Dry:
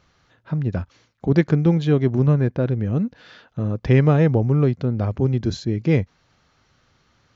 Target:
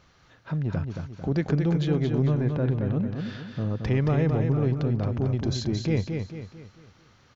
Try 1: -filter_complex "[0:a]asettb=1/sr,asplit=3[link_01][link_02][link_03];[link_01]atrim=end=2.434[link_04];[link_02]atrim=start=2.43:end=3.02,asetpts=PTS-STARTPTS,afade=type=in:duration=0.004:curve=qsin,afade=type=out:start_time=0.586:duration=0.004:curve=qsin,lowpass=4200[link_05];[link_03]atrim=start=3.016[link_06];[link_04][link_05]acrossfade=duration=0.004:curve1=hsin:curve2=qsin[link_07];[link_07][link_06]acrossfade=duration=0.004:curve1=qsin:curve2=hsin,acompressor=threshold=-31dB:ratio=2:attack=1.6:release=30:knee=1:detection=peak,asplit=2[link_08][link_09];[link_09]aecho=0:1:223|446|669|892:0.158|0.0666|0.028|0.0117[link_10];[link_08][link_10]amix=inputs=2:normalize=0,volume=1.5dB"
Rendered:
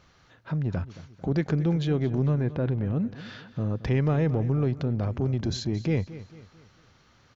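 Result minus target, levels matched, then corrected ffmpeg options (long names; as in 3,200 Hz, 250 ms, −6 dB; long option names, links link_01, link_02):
echo-to-direct −10.5 dB
-filter_complex "[0:a]asettb=1/sr,asplit=3[link_01][link_02][link_03];[link_01]atrim=end=2.434[link_04];[link_02]atrim=start=2.43:end=3.02,asetpts=PTS-STARTPTS,afade=type=in:duration=0.004:curve=qsin,afade=type=out:start_time=0.586:duration=0.004:curve=qsin,lowpass=4200[link_05];[link_03]atrim=start=3.016[link_06];[link_04][link_05]acrossfade=duration=0.004:curve1=hsin:curve2=qsin[link_07];[link_07][link_06]acrossfade=duration=0.004:curve1=qsin:curve2=hsin,acompressor=threshold=-31dB:ratio=2:attack=1.6:release=30:knee=1:detection=peak,asplit=2[link_08][link_09];[link_09]aecho=0:1:223|446|669|892|1115:0.531|0.223|0.0936|0.0393|0.0165[link_10];[link_08][link_10]amix=inputs=2:normalize=0,volume=1.5dB"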